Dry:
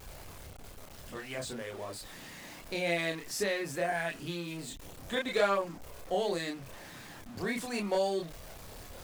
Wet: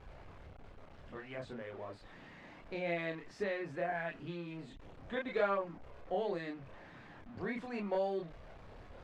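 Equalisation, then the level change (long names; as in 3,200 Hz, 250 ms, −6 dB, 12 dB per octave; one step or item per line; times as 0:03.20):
low-pass filter 2,200 Hz 12 dB per octave
−4.5 dB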